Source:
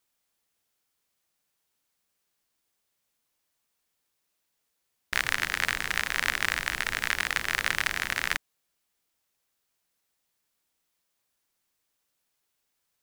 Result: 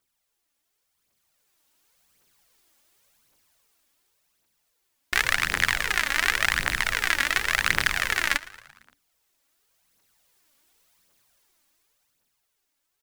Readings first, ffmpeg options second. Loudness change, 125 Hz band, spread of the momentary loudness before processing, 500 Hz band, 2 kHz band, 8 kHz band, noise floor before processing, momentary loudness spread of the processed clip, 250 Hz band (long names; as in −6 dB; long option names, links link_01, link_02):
+4.5 dB, +5.5 dB, 3 LU, +4.5 dB, +4.5 dB, +4.5 dB, −79 dBFS, 3 LU, +4.0 dB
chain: -filter_complex "[0:a]dynaudnorm=framelen=190:gausssize=17:maxgain=13dB,asplit=6[link_01][link_02][link_03][link_04][link_05][link_06];[link_02]adelay=114,afreqshift=-59,volume=-20dB[link_07];[link_03]adelay=228,afreqshift=-118,volume=-24.3dB[link_08];[link_04]adelay=342,afreqshift=-177,volume=-28.6dB[link_09];[link_05]adelay=456,afreqshift=-236,volume=-32.9dB[link_10];[link_06]adelay=570,afreqshift=-295,volume=-37.2dB[link_11];[link_01][link_07][link_08][link_09][link_10][link_11]amix=inputs=6:normalize=0,aphaser=in_gain=1:out_gain=1:delay=3.7:decay=0.52:speed=0.9:type=triangular,volume=-1dB"